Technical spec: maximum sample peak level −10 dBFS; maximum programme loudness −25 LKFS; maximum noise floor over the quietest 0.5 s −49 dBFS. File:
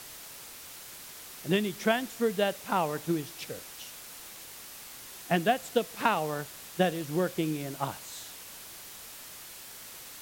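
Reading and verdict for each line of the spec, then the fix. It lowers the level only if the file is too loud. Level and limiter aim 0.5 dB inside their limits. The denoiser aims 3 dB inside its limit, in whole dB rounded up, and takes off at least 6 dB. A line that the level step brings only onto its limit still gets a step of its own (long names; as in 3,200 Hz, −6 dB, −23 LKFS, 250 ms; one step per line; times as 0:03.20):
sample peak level −11.0 dBFS: in spec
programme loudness −31.0 LKFS: in spec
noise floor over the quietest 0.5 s −46 dBFS: out of spec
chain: broadband denoise 6 dB, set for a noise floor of −46 dBFS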